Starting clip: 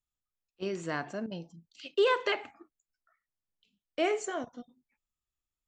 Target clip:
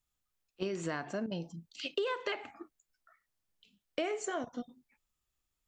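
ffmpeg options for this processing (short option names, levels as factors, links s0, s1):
-af "acompressor=threshold=0.0112:ratio=6,volume=2.11"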